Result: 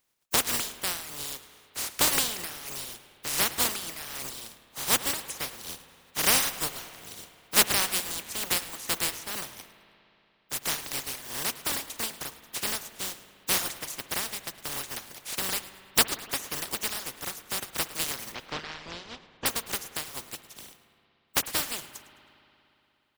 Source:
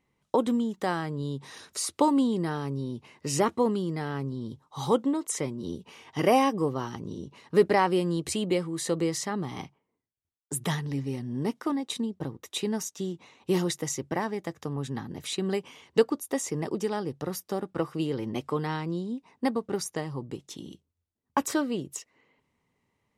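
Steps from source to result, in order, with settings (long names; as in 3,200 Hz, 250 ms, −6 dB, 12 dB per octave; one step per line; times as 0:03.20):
compressing power law on the bin magnitudes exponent 0.11
reverb reduction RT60 1.7 s
0:18.32–0:19.46: Bessel low-pass filter 3,400 Hz, order 6
echo with shifted repeats 106 ms, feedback 36%, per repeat −60 Hz, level −17 dB
spring reverb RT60 3.1 s, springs 58 ms, chirp 25 ms, DRR 13.5 dB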